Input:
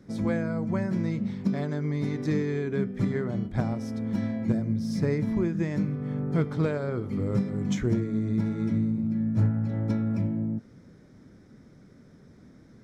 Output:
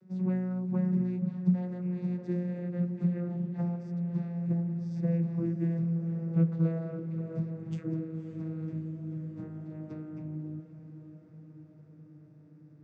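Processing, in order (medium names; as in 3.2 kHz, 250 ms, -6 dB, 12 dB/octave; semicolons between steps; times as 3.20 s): vocoder on a note that slides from F#3, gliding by -4 st; on a send: echo that smears into a reverb 557 ms, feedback 70%, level -13 dB; on the sum: trim -4 dB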